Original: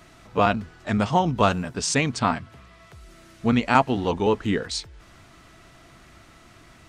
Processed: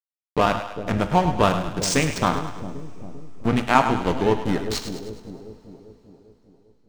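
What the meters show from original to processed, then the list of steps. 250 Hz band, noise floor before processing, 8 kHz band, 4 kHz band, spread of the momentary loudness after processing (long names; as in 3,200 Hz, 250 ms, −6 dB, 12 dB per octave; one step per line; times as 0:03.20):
+0.5 dB, −52 dBFS, +1.5 dB, +1.0 dB, 20 LU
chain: high-shelf EQ 6,800 Hz +4.5 dB
in parallel at 0 dB: downward compressor 6 to 1, threshold −28 dBFS, peak gain reduction 15.5 dB
on the sum: slack as between gear wheels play −15.5 dBFS
echo with a time of its own for lows and highs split 580 Hz, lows 397 ms, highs 104 ms, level −9.5 dB
coupled-rooms reverb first 0.51 s, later 4.3 s, from −22 dB, DRR 9.5 dB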